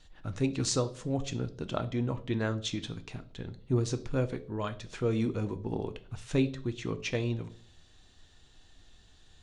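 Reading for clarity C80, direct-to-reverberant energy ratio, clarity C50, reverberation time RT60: 21.0 dB, 10.0 dB, 16.5 dB, 0.55 s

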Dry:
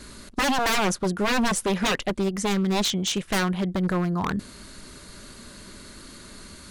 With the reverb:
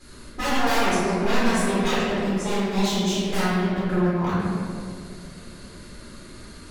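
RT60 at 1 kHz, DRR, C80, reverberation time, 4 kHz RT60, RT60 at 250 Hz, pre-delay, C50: 1.9 s, -12.0 dB, -1.0 dB, 2.3 s, 1.1 s, 2.8 s, 6 ms, -3.5 dB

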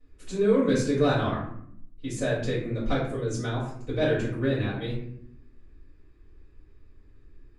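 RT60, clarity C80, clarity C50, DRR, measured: 0.70 s, 7.0 dB, 3.5 dB, -11.0 dB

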